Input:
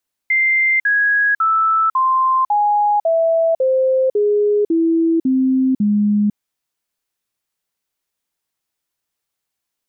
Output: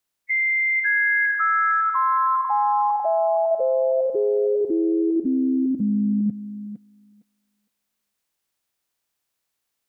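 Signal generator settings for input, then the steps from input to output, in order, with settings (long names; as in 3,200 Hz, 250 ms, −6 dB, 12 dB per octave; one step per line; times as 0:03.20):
stepped sweep 2,090 Hz down, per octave 3, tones 11, 0.50 s, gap 0.05 s −12 dBFS
spectral magnitudes quantised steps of 30 dB
brickwall limiter −18 dBFS
on a send: feedback echo with a high-pass in the loop 459 ms, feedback 25%, high-pass 500 Hz, level −4 dB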